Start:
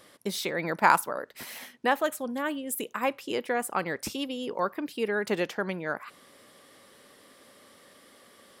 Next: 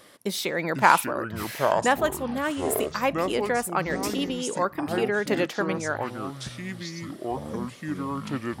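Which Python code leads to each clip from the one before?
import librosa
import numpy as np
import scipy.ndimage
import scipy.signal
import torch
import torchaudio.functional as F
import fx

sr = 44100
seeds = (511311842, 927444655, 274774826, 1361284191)

y = fx.echo_pitch(x, sr, ms=368, semitones=-7, count=3, db_per_echo=-6.0)
y = y * 10.0 ** (3.0 / 20.0)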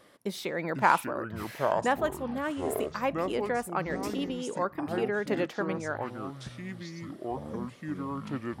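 y = fx.high_shelf(x, sr, hz=2700.0, db=-8.0)
y = y * 10.0 ** (-4.0 / 20.0)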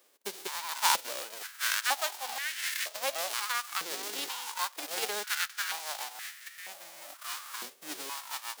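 y = fx.envelope_flatten(x, sr, power=0.1)
y = fx.dynamic_eq(y, sr, hz=4200.0, q=0.73, threshold_db=-41.0, ratio=4.0, max_db=5)
y = fx.filter_held_highpass(y, sr, hz=2.1, low_hz=400.0, high_hz=1800.0)
y = y * 10.0 ** (-7.5 / 20.0)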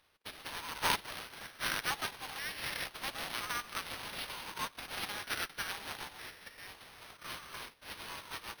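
y = scipy.signal.sosfilt(scipy.signal.butter(4, 850.0, 'highpass', fs=sr, output='sos'), x)
y = np.repeat(y[::6], 6)[:len(y)]
y = y * 10.0 ** (-5.0 / 20.0)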